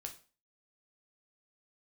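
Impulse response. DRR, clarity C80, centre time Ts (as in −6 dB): 3.5 dB, 18.0 dB, 10 ms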